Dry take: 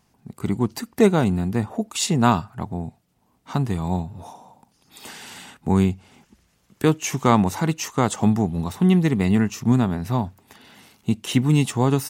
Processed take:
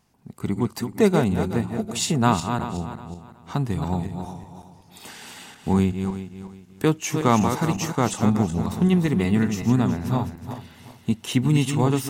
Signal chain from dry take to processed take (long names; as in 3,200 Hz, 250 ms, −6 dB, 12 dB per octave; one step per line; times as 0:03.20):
feedback delay that plays each chunk backwards 185 ms, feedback 52%, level −7 dB
level −2 dB